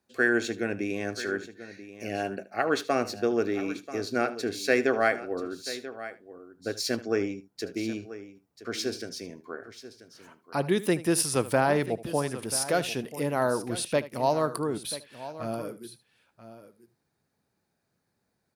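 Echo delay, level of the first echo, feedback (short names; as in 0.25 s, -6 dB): 76 ms, -17.0 dB, no steady repeat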